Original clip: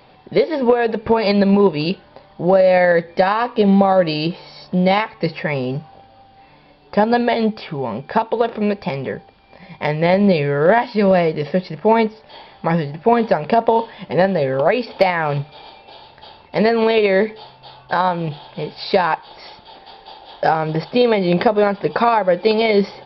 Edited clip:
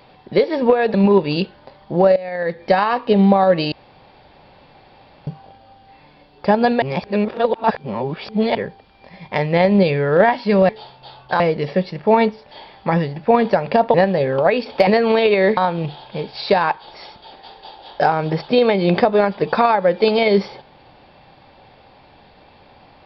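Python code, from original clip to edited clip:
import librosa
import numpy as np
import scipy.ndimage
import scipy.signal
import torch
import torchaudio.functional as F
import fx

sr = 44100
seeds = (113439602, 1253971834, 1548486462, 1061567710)

y = fx.edit(x, sr, fx.cut(start_s=0.94, length_s=0.49),
    fx.fade_in_from(start_s=2.65, length_s=0.49, curve='qua', floor_db=-17.5),
    fx.room_tone_fill(start_s=4.21, length_s=1.55),
    fx.reverse_span(start_s=7.31, length_s=1.73),
    fx.cut(start_s=13.72, length_s=0.43),
    fx.cut(start_s=15.08, length_s=1.51),
    fx.move(start_s=17.29, length_s=0.71, to_s=11.18), tone=tone)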